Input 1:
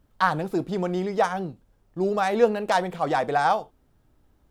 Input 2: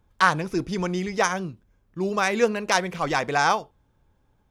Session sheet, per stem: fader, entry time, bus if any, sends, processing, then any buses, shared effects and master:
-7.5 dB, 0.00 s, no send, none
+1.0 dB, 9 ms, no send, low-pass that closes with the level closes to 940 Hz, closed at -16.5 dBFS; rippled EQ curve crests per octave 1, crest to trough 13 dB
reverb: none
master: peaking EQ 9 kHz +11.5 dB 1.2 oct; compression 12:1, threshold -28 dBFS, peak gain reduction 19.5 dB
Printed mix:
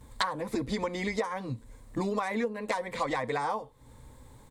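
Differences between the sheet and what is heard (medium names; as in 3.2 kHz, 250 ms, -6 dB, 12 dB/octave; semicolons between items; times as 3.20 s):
stem 1 -7.5 dB -> +4.0 dB; stem 2 +1.0 dB -> +10.0 dB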